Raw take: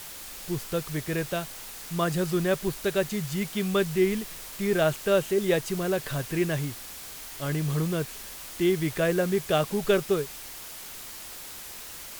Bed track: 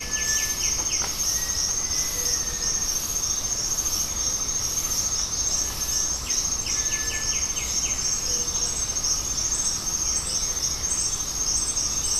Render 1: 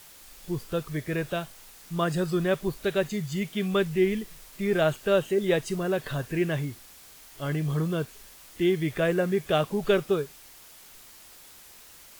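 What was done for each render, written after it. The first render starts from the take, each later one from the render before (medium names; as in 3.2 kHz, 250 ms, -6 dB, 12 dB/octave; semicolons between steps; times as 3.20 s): noise print and reduce 9 dB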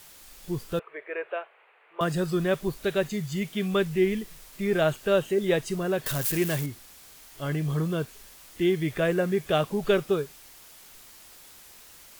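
0.79–2.01 s: elliptic band-pass 430–2500 Hz; 6.06–6.66 s: zero-crossing glitches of -22 dBFS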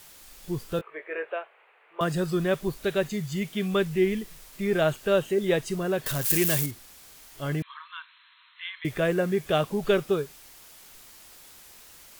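0.77–1.30 s: doubling 19 ms -6.5 dB; 6.30–6.71 s: treble shelf 3.9 kHz +10.5 dB; 7.62–8.85 s: brick-wall FIR band-pass 910–4200 Hz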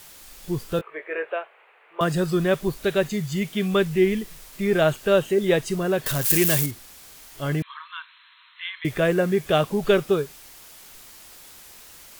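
trim +4 dB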